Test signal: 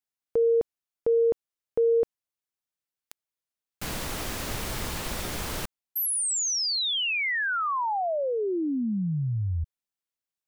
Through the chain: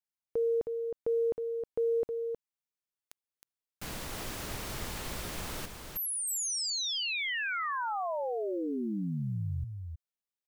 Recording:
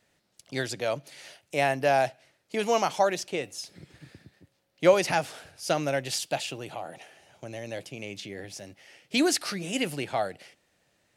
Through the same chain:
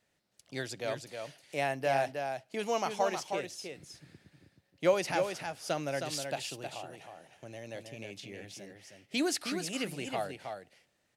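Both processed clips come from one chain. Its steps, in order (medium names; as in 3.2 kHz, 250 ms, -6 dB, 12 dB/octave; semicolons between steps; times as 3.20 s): short-mantissa float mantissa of 6-bit; delay 315 ms -6 dB; trim -7 dB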